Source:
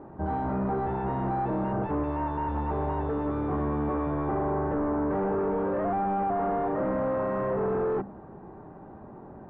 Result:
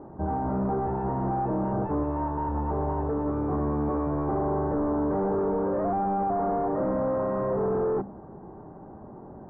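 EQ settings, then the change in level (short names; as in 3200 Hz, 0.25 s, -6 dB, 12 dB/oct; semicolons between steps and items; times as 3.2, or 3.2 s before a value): LPF 1200 Hz 12 dB/oct; +1.5 dB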